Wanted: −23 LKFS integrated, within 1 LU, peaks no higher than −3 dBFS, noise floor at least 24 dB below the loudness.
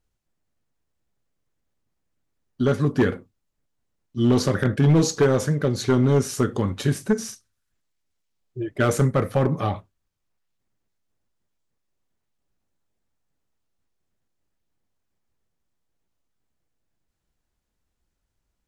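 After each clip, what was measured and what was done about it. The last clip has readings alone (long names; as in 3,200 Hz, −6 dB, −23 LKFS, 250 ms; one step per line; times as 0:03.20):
share of clipped samples 0.6%; peaks flattened at −12.0 dBFS; integrated loudness −22.0 LKFS; sample peak −12.0 dBFS; target loudness −23.0 LKFS
→ clipped peaks rebuilt −12 dBFS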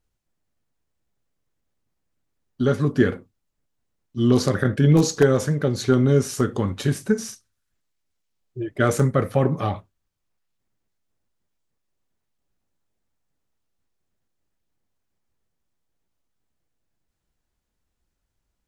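share of clipped samples 0.0%; integrated loudness −21.0 LKFS; sample peak −3.5 dBFS; target loudness −23.0 LKFS
→ level −2 dB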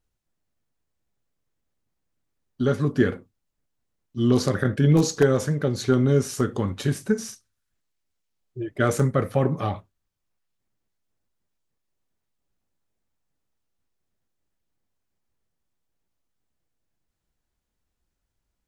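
integrated loudness −23.0 LKFS; sample peak −5.5 dBFS; background noise floor −80 dBFS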